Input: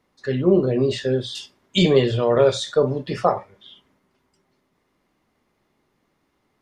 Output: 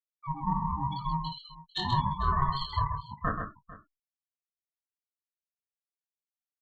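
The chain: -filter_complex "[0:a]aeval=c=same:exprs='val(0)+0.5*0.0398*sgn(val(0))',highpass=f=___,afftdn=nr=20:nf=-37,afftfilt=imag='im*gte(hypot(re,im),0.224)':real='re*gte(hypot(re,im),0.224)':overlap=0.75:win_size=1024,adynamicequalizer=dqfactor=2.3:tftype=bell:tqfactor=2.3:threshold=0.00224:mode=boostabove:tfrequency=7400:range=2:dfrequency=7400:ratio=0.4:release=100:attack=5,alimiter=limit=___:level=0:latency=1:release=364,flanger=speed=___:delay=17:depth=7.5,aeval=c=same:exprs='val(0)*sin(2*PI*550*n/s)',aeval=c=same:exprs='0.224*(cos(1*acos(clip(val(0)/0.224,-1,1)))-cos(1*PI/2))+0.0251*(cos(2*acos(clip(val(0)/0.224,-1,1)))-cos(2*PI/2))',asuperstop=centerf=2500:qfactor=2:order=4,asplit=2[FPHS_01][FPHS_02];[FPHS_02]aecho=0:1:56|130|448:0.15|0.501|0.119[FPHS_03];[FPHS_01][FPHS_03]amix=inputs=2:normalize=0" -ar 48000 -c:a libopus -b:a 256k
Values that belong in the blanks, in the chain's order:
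490, -12dB, 0.93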